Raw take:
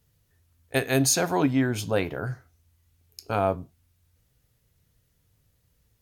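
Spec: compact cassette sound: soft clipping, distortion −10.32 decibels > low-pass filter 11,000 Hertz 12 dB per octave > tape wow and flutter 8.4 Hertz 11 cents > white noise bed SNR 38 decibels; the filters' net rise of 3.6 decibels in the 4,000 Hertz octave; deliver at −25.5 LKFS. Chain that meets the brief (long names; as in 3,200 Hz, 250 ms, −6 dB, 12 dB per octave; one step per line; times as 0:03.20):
parametric band 4,000 Hz +4.5 dB
soft clipping −21.5 dBFS
low-pass filter 11,000 Hz 12 dB per octave
tape wow and flutter 8.4 Hz 11 cents
white noise bed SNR 38 dB
level +3.5 dB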